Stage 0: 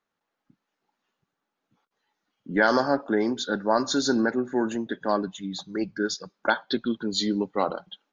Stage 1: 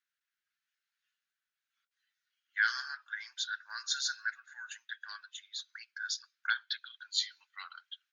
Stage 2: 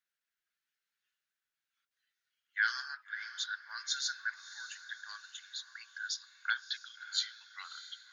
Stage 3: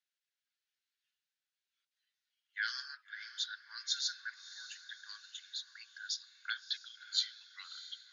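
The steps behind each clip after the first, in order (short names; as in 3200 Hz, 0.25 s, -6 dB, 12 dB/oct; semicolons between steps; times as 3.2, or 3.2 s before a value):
elliptic high-pass 1500 Hz, stop band 70 dB; gain -3.5 dB
diffused feedback echo 0.626 s, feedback 48%, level -14 dB; gain -1.5 dB
band-pass 4000 Hz, Q 1; gain +1 dB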